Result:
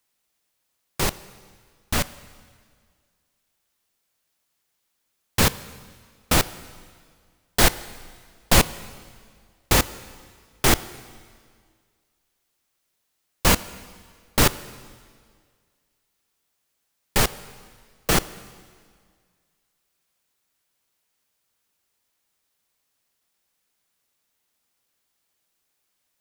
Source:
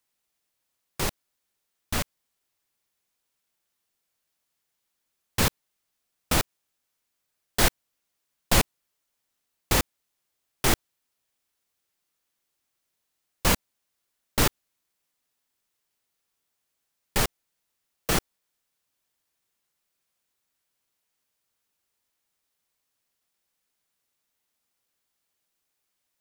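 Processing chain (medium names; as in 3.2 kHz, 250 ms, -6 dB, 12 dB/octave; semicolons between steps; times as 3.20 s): on a send: reverberation RT60 1.9 s, pre-delay 5 ms, DRR 16 dB; on the sum: trim +4.5 dB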